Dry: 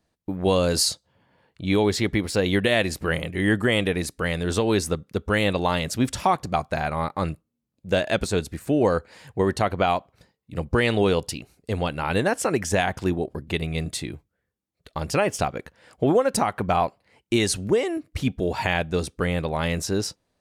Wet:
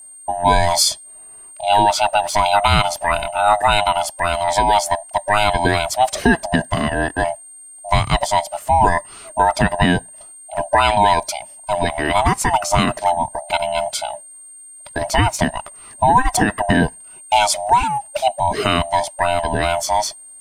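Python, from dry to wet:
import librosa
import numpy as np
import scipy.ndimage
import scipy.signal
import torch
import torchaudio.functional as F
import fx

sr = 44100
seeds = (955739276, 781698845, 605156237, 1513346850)

y = fx.band_swap(x, sr, width_hz=500)
y = fx.quant_dither(y, sr, seeds[0], bits=12, dither='triangular')
y = y + 10.0 ** (-44.0 / 20.0) * np.sin(2.0 * np.pi * 8700.0 * np.arange(len(y)) / sr)
y = y * 10.0 ** (6.5 / 20.0)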